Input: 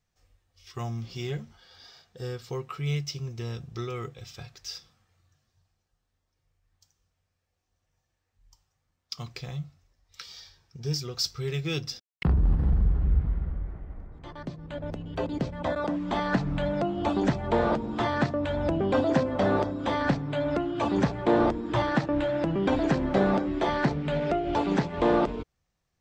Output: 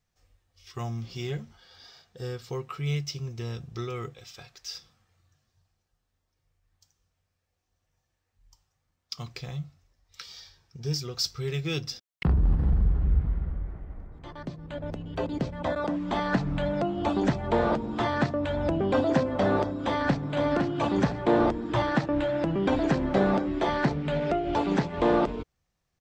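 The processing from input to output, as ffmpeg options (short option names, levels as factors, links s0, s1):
-filter_complex "[0:a]asettb=1/sr,asplit=3[s0][s1][s2];[s0]atrim=end=4.154[s3];[s1]atrim=start=4.15:end=4.75,asetpts=PTS-STARTPTS,afade=t=in:d=0.004:c=qsin,afade=t=out:st=0.596:d=0.004:c=qsin,equalizer=f=94:w=0.42:g=-10[s4];[s2]atrim=start=4.746[s5];[s3][s4]acrossfade=d=0.004:c1=hsin:c2=qsin[s6];[s6][s5]acrossfade=d=0.004:c1=qsin:c2=hsin,asplit=2[s7][s8];[s8]afade=t=in:st=19.71:d=0.01,afade=t=out:st=20.36:d=0.01,aecho=0:1:510|1020|1530|2040:0.562341|0.168702|0.0506107|0.0151832[s9];[s7][s9]amix=inputs=2:normalize=0"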